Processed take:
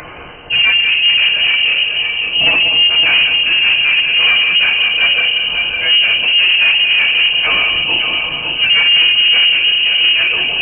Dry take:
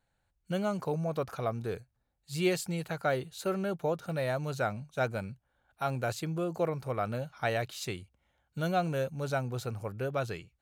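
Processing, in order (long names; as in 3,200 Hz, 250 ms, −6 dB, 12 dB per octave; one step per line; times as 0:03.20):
spike at every zero crossing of −28 dBFS
parametric band 1,600 Hz −11.5 dB 0.58 octaves
mains-hum notches 60/120/180 Hz
echo machine with several playback heads 186 ms, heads first and third, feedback 43%, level −9 dB
rectangular room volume 250 cubic metres, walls furnished, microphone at 4.8 metres
upward compression, threshold −21 dBFS
octave-band graphic EQ 125/250/500/2,000 Hz +7/+9/+4/+9 dB
leveller curve on the samples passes 3
voice inversion scrambler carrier 3,000 Hz
level −6 dB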